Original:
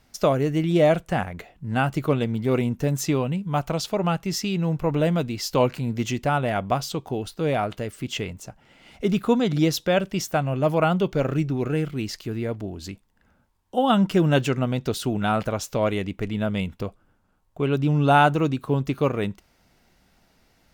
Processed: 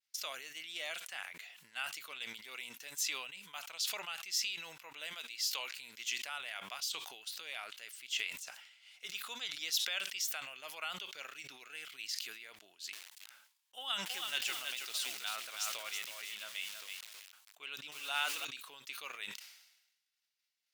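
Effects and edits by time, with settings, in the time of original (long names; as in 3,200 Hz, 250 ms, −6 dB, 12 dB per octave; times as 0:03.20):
0:05.13–0:05.70: high-pass filter 290 Hz
0:12.60–0:18.45: feedback echo at a low word length 324 ms, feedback 35%, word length 6 bits, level −4 dB
whole clip: downward expander −51 dBFS; Chebyshev high-pass filter 2,900 Hz, order 2; level that may fall only so fast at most 57 dB per second; level −4.5 dB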